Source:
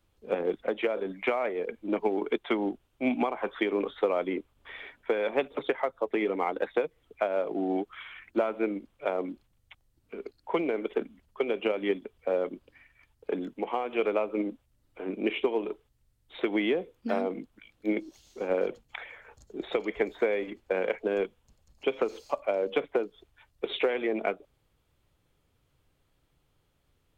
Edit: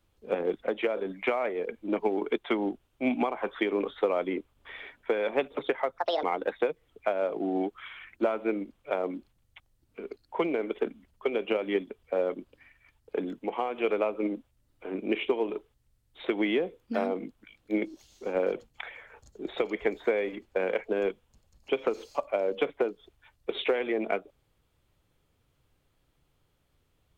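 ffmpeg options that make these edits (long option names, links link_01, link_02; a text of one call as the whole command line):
ffmpeg -i in.wav -filter_complex "[0:a]asplit=3[link_01][link_02][link_03];[link_01]atrim=end=5.984[link_04];[link_02]atrim=start=5.98:end=6.38,asetpts=PTS-STARTPTS,asetrate=69678,aresample=44100[link_05];[link_03]atrim=start=6.376[link_06];[link_04][link_05]acrossfade=duration=0.004:curve1=hsin:curve2=hsin[link_07];[link_07][link_06]acrossfade=duration=0.004:curve1=hsin:curve2=hsin" out.wav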